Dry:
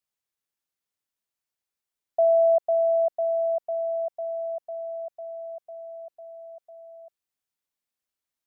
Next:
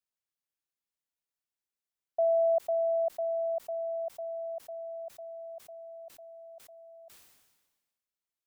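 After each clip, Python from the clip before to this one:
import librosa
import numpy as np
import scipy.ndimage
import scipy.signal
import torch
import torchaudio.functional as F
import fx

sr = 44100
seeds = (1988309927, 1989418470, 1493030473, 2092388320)

y = fx.sustainer(x, sr, db_per_s=43.0)
y = F.gain(torch.from_numpy(y), -6.5).numpy()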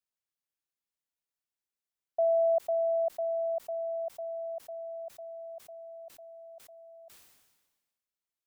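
y = x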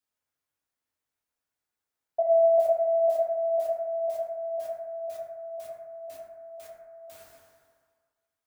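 y = fx.rev_fdn(x, sr, rt60_s=1.7, lf_ratio=0.75, hf_ratio=0.25, size_ms=65.0, drr_db=-5.5)
y = F.gain(torch.from_numpy(y), 1.0).numpy()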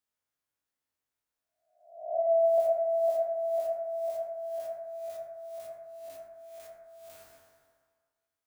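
y = fx.spec_swells(x, sr, rise_s=0.62)
y = F.gain(torch.from_numpy(y), -4.0).numpy()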